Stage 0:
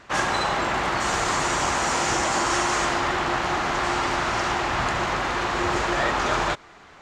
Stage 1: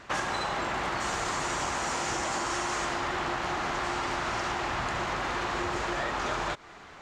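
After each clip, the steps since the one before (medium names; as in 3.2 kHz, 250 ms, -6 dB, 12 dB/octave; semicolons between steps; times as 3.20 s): compression, threshold -28 dBFS, peak gain reduction 9 dB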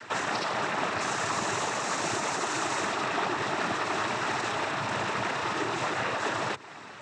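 peak limiter -25 dBFS, peak gain reduction 6 dB; noise-vocoded speech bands 12; trim +5 dB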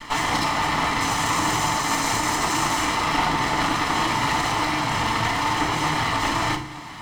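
comb filter that takes the minimum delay 0.97 ms; FDN reverb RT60 0.57 s, low-frequency decay 1.6×, high-frequency decay 0.8×, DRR 2 dB; trim +6.5 dB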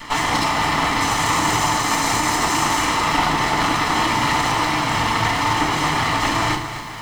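upward compressor, threshold -43 dBFS; bit-crushed delay 255 ms, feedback 55%, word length 7-bit, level -10.5 dB; trim +3 dB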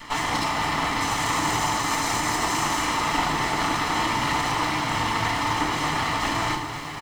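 delay 1013 ms -11 dB; trim -5.5 dB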